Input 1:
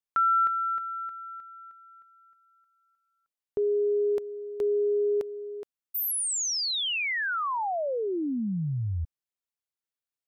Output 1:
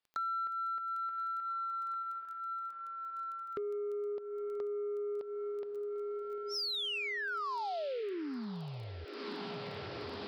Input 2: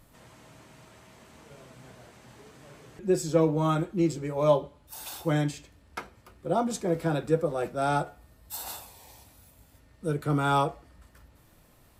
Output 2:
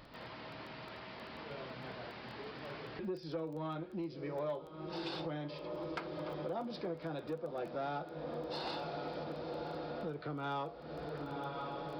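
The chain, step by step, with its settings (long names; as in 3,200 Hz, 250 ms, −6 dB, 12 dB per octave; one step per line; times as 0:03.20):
dynamic equaliser 1,700 Hz, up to −4 dB, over −37 dBFS, Q 0.71
on a send: feedback delay with all-pass diffusion 1,023 ms, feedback 74%, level −16 dB
on the sum: downsampling to 11,025 Hz
downward compressor 6 to 1, threshold −42 dBFS
soft clipping −35 dBFS
low-shelf EQ 160 Hz −11.5 dB
surface crackle 10 per second −53 dBFS
level +7 dB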